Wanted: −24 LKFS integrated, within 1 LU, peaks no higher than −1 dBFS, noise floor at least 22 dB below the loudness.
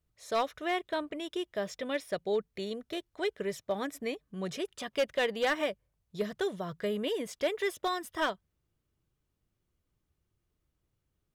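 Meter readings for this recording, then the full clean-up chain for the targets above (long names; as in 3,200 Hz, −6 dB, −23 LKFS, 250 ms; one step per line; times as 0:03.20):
share of clipped samples 0.5%; peaks flattened at −22.5 dBFS; integrated loudness −34.0 LKFS; sample peak −22.5 dBFS; target loudness −24.0 LKFS
→ clipped peaks rebuilt −22.5 dBFS
level +10 dB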